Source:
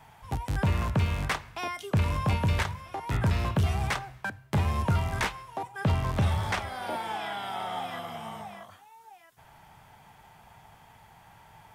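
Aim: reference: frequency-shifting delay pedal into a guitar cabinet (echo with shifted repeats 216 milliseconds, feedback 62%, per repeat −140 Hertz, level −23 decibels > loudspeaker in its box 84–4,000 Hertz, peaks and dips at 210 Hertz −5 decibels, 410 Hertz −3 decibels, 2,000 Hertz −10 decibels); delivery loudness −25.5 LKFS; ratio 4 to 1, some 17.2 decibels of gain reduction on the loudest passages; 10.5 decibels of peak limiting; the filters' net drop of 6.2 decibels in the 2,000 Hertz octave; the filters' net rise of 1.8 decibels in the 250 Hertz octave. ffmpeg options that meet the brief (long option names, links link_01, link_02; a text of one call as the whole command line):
ffmpeg -i in.wav -filter_complex "[0:a]equalizer=frequency=250:width_type=o:gain=6.5,equalizer=frequency=2000:width_type=o:gain=-3.5,acompressor=threshold=-41dB:ratio=4,alimiter=level_in=11dB:limit=-24dB:level=0:latency=1,volume=-11dB,asplit=6[link_01][link_02][link_03][link_04][link_05][link_06];[link_02]adelay=216,afreqshift=-140,volume=-23dB[link_07];[link_03]adelay=432,afreqshift=-280,volume=-27.2dB[link_08];[link_04]adelay=648,afreqshift=-420,volume=-31.3dB[link_09];[link_05]adelay=864,afreqshift=-560,volume=-35.5dB[link_10];[link_06]adelay=1080,afreqshift=-700,volume=-39.6dB[link_11];[link_01][link_07][link_08][link_09][link_10][link_11]amix=inputs=6:normalize=0,highpass=84,equalizer=frequency=210:width_type=q:width=4:gain=-5,equalizer=frequency=410:width_type=q:width=4:gain=-3,equalizer=frequency=2000:width_type=q:width=4:gain=-10,lowpass=frequency=4000:width=0.5412,lowpass=frequency=4000:width=1.3066,volume=22dB" out.wav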